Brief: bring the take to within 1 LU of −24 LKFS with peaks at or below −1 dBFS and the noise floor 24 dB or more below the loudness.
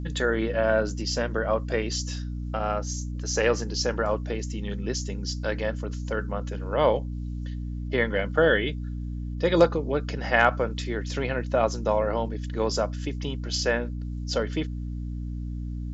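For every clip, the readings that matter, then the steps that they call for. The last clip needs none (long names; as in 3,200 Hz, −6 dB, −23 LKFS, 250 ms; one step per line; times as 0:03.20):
mains hum 60 Hz; hum harmonics up to 300 Hz; level of the hum −30 dBFS; integrated loudness −27.0 LKFS; sample peak −5.5 dBFS; target loudness −24.0 LKFS
→ hum removal 60 Hz, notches 5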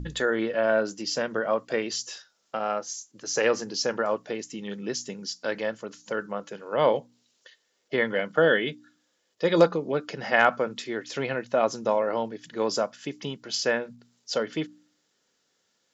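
mains hum none found; integrated loudness −27.5 LKFS; sample peak −6.5 dBFS; target loudness −24.0 LKFS
→ level +3.5 dB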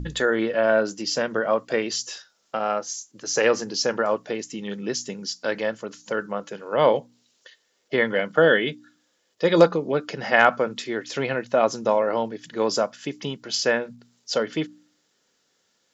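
integrated loudness −24.0 LKFS; sample peak −3.0 dBFS; background noise floor −69 dBFS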